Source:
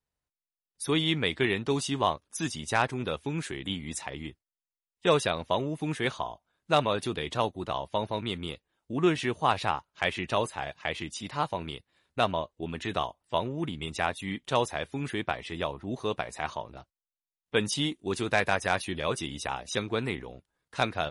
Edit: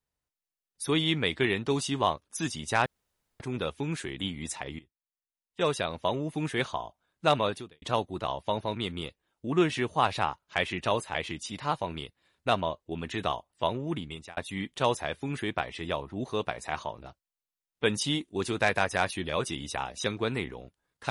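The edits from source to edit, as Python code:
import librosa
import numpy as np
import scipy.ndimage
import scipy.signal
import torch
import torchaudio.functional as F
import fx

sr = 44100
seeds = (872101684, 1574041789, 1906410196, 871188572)

y = fx.edit(x, sr, fx.insert_room_tone(at_s=2.86, length_s=0.54),
    fx.fade_in_from(start_s=4.25, length_s=1.47, floor_db=-19.0),
    fx.fade_out_span(start_s=6.94, length_s=0.34, curve='qua'),
    fx.cut(start_s=10.61, length_s=0.25),
    fx.fade_out_span(start_s=13.68, length_s=0.4), tone=tone)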